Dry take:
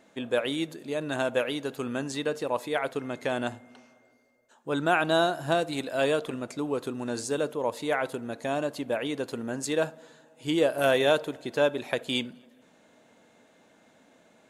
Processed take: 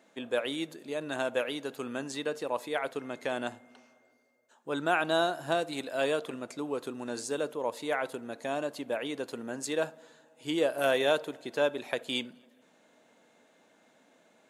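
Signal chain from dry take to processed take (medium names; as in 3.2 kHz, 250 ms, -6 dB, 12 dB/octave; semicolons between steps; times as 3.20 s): high-pass 99 Hz; bass shelf 130 Hz -11 dB; trim -3 dB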